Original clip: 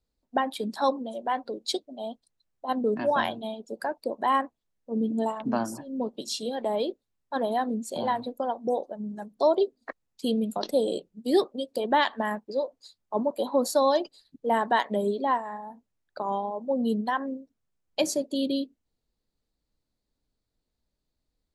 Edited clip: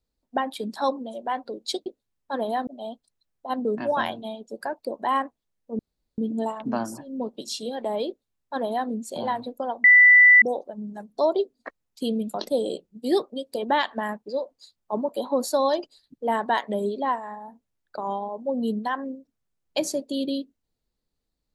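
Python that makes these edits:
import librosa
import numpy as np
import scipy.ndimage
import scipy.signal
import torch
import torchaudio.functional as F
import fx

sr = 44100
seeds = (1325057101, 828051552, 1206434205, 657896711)

y = fx.edit(x, sr, fx.insert_room_tone(at_s=4.98, length_s=0.39),
    fx.duplicate(start_s=6.88, length_s=0.81, to_s=1.86),
    fx.insert_tone(at_s=8.64, length_s=0.58, hz=1980.0, db=-9.5), tone=tone)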